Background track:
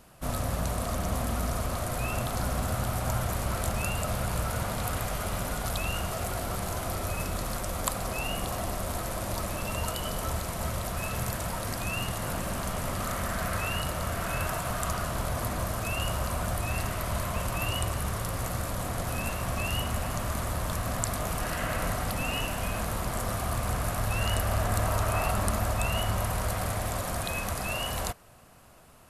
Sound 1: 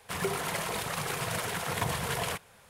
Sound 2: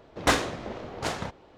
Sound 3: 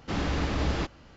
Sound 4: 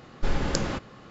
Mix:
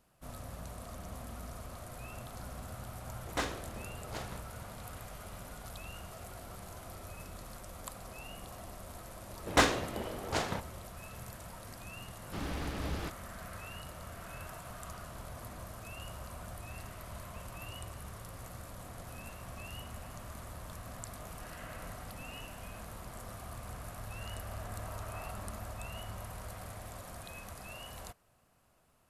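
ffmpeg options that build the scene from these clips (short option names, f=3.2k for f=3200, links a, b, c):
-filter_complex "[2:a]asplit=2[a][b];[0:a]volume=-15dB[c];[3:a]aeval=exprs='sgn(val(0))*max(abs(val(0))-0.00708,0)':c=same[d];[a]atrim=end=1.57,asetpts=PTS-STARTPTS,volume=-12.5dB,afade=t=in:d=0.004:c=hsin,afade=t=out:st=1.566:d=0.004:c=hsin,adelay=3100[e];[b]atrim=end=1.57,asetpts=PTS-STARTPTS,volume=-2.5dB,afade=t=in:d=0.004:c=hsin,afade=t=out:st=1.566:d=0.004:c=hsin,adelay=410130S[f];[d]atrim=end=1.16,asetpts=PTS-STARTPTS,volume=-8.5dB,afade=t=in:d=0.004:c=hsin,afade=t=out:st=1.156:d=0.004:c=hsin,adelay=12240[g];[c][e][f][g]amix=inputs=4:normalize=0"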